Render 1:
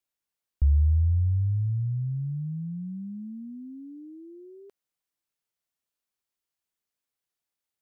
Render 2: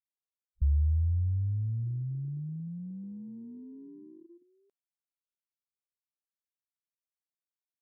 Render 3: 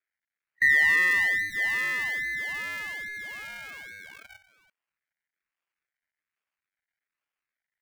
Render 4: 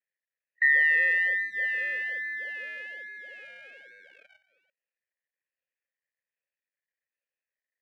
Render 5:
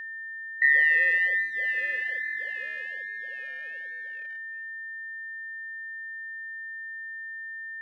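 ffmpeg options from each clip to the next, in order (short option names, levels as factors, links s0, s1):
-af "afwtdn=0.0316,volume=0.562"
-af "acrusher=samples=41:mix=1:aa=0.000001:lfo=1:lforange=41:lforate=1.2,bandreject=f=50:t=h:w=6,bandreject=f=100:t=h:w=6,aeval=exprs='val(0)*sin(2*PI*1900*n/s)':c=same,volume=2.37"
-filter_complex "[0:a]asplit=3[s0][s1][s2];[s0]bandpass=f=530:t=q:w=8,volume=1[s3];[s1]bandpass=f=1840:t=q:w=8,volume=0.501[s4];[s2]bandpass=f=2480:t=q:w=8,volume=0.355[s5];[s3][s4][s5]amix=inputs=3:normalize=0,volume=2.11"
-af "aeval=exprs='val(0)+0.0158*sin(2*PI*1800*n/s)':c=same,volume=1.12"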